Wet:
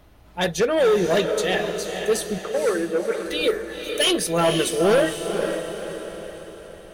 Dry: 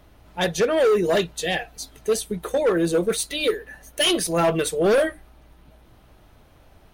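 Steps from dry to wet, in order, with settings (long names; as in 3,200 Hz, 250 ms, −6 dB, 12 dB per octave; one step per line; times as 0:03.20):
0:02.38–0:03.26: loudspeaker in its box 390–2,300 Hz, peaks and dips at 670 Hz −3 dB, 1,000 Hz −5 dB, 2,200 Hz +4 dB
feedback delay with all-pass diffusion 501 ms, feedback 48%, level −6.5 dB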